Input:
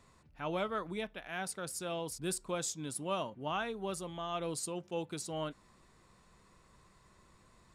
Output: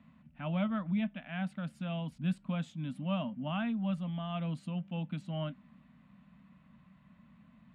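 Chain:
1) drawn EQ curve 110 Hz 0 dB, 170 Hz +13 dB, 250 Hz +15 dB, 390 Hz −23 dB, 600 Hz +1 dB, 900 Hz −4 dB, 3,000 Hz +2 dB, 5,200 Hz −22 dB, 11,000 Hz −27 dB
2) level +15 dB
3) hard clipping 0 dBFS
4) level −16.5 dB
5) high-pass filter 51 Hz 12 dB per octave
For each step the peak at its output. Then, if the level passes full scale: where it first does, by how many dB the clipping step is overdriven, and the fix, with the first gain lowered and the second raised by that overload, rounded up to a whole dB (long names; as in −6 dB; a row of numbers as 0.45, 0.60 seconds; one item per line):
−21.0, −6.0, −6.0, −22.5, −22.0 dBFS
no step passes full scale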